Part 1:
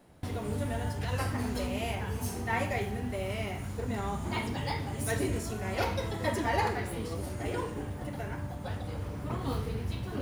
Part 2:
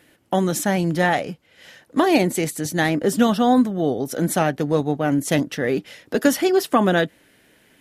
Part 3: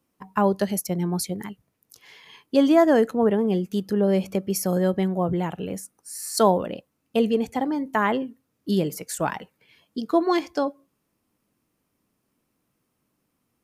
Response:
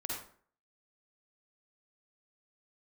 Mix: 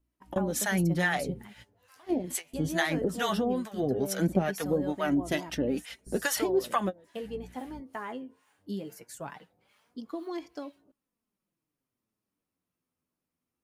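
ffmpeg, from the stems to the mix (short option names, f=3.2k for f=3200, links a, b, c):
-filter_complex "[0:a]highpass=f=1.5k:p=1,acompressor=threshold=-43dB:ratio=4,flanger=delay=15:depth=6.8:speed=0.2,adelay=700,volume=-7.5dB[a];[1:a]aeval=exprs='val(0)+0.00891*(sin(2*PI*60*n/s)+sin(2*PI*2*60*n/s)/2+sin(2*PI*3*60*n/s)/3+sin(2*PI*4*60*n/s)/4+sin(2*PI*5*60*n/s)/5)':c=same,volume=3dB[b];[2:a]acompressor=threshold=-19dB:ratio=6,volume=-10dB,asplit=2[c][d];[d]apad=whole_len=344027[e];[b][e]sidechaingate=range=-33dB:threshold=-57dB:ratio=16:detection=peak[f];[a][f]amix=inputs=2:normalize=0,acrossover=split=680[g][h];[g]aeval=exprs='val(0)*(1-1/2+1/2*cos(2*PI*2.3*n/s))':c=same[i];[h]aeval=exprs='val(0)*(1-1/2-1/2*cos(2*PI*2.3*n/s))':c=same[j];[i][j]amix=inputs=2:normalize=0,acompressor=threshold=-20dB:ratio=6,volume=0dB[k];[c][k]amix=inputs=2:normalize=0,flanger=delay=3:depth=9.1:regen=32:speed=0.19:shape=sinusoidal"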